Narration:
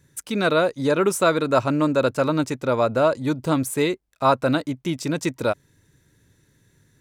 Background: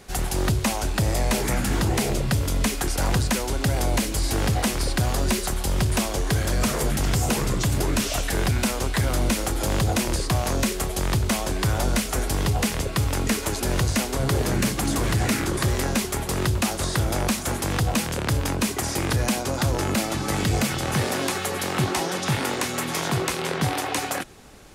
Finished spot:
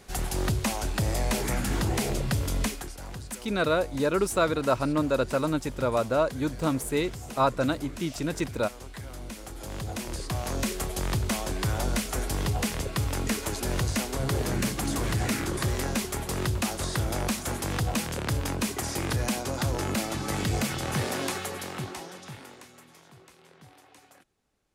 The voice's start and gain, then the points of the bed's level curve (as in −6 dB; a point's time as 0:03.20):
3.15 s, −5.5 dB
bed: 0:02.63 −4.5 dB
0:02.97 −17.5 dB
0:09.27 −17.5 dB
0:10.72 −5 dB
0:21.32 −5 dB
0:23.06 −29 dB